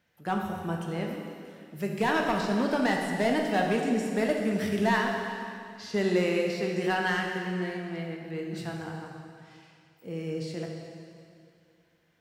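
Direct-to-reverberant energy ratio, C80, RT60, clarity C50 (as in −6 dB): 0.0 dB, 3.5 dB, 2.4 s, 2.5 dB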